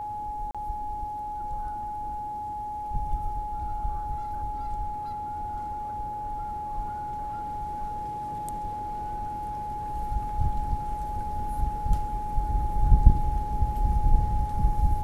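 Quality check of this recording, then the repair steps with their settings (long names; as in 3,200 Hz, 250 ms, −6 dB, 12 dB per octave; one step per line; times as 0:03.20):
whistle 840 Hz −31 dBFS
0:00.51–0:00.55: drop-out 36 ms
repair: notch filter 840 Hz, Q 30
repair the gap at 0:00.51, 36 ms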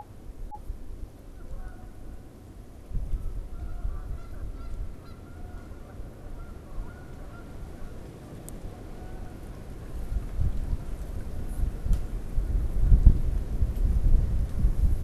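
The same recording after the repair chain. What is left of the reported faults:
whistle 840 Hz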